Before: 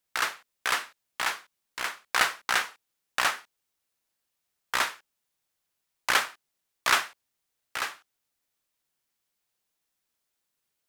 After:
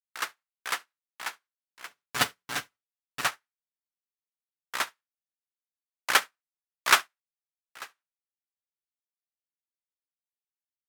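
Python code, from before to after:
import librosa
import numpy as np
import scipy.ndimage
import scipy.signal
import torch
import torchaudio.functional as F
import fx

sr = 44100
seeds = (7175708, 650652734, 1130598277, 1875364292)

y = fx.lower_of_two(x, sr, delay_ms=6.9, at=(1.87, 3.23), fade=0.02)
y = scipy.signal.sosfilt(scipy.signal.butter(2, 88.0, 'highpass', fs=sr, output='sos'), y)
y = fx.high_shelf(y, sr, hz=9200.0, db=4.5)
y = fx.hum_notches(y, sr, base_hz=60, count=3)
y = y + 10.0 ** (-13.5 / 20.0) * np.pad(y, (int(70 * sr / 1000.0), 0))[:len(y)]
y = fx.upward_expand(y, sr, threshold_db=-44.0, expansion=2.5)
y = F.gain(torch.from_numpy(y), 4.5).numpy()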